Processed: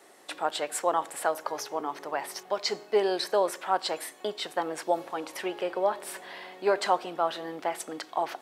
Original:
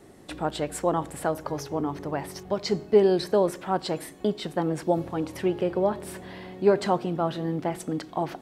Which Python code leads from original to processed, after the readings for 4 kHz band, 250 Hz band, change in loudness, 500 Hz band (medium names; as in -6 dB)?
+3.0 dB, -11.0 dB, -3.0 dB, -4.0 dB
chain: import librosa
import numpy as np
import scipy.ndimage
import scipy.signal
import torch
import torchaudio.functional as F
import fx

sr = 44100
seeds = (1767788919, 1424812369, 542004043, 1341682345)

y = scipy.signal.sosfilt(scipy.signal.butter(2, 680.0, 'highpass', fs=sr, output='sos'), x)
y = F.gain(torch.from_numpy(y), 3.0).numpy()